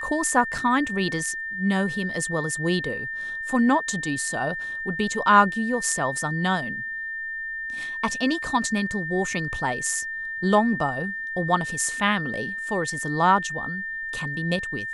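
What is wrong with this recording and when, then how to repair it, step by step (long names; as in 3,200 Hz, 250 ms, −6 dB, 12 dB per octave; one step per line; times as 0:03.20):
whistle 1,800 Hz −29 dBFS
0:00.58: drop-out 3.9 ms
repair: notch filter 1,800 Hz, Q 30
repair the gap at 0:00.58, 3.9 ms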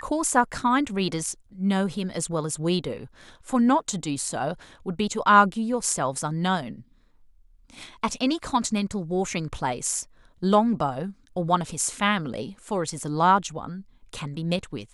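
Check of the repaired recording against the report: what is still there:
none of them is left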